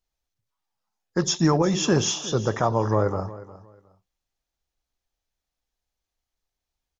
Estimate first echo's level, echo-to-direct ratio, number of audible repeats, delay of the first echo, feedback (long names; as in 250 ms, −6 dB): −17.5 dB, −17.5 dB, 2, 359 ms, 22%